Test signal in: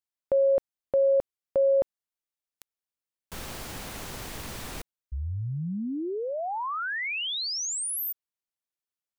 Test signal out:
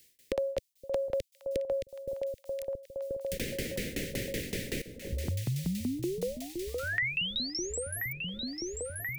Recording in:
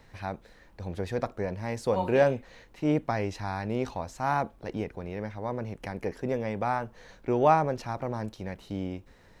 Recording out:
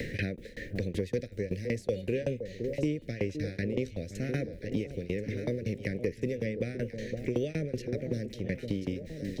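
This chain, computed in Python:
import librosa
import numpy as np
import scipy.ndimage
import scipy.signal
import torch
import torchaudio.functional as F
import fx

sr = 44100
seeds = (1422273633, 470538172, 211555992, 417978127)

y = scipy.signal.sosfilt(scipy.signal.cheby1(3, 1.0, [510.0, 1900.0], 'bandstop', fs=sr, output='sos'), x)
y = fx.tremolo_shape(y, sr, shape='saw_down', hz=5.3, depth_pct=100)
y = fx.echo_alternate(y, sr, ms=516, hz=890.0, feedback_pct=68, wet_db=-13)
y = fx.band_squash(y, sr, depth_pct=100)
y = y * librosa.db_to_amplitude(4.0)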